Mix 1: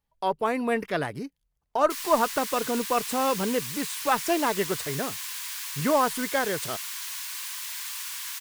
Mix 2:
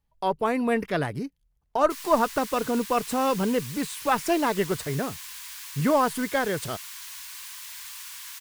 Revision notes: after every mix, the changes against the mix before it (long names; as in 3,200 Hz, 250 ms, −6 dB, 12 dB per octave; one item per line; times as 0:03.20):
background −5.0 dB
master: add low-shelf EQ 200 Hz +8 dB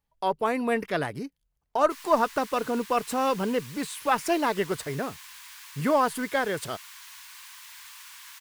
background: add high-shelf EQ 3,200 Hz −8 dB
master: add low-shelf EQ 200 Hz −8 dB